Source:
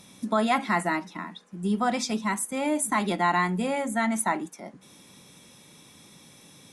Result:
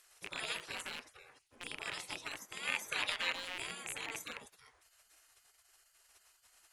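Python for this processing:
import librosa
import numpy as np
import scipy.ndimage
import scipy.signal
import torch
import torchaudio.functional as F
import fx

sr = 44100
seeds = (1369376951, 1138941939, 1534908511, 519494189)

y = fx.rattle_buzz(x, sr, strikes_db=-35.0, level_db=-23.0)
y = fx.spec_gate(y, sr, threshold_db=-20, keep='weak')
y = fx.peak_eq(y, sr, hz=1800.0, db=7.5, octaves=2.9, at=(2.63, 3.33))
y = y * librosa.db_to_amplitude(-3.5)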